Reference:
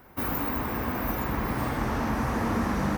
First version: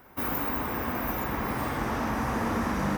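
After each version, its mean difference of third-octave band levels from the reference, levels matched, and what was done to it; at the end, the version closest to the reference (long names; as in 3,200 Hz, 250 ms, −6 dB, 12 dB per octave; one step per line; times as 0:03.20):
1.5 dB: low-shelf EQ 250 Hz −4.5 dB
notch filter 4,300 Hz, Q 20
flutter between parallel walls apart 10.4 metres, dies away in 0.33 s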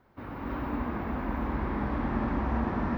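8.0 dB: background noise violet −50 dBFS
high-frequency loss of the air 350 metres
reverb whose tail is shaped and stops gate 350 ms rising, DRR −5.5 dB
level −9 dB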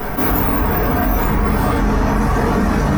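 3.5 dB: reverb reduction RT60 1.6 s
rectangular room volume 42 cubic metres, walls mixed, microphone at 1.8 metres
envelope flattener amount 70%
level +1 dB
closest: first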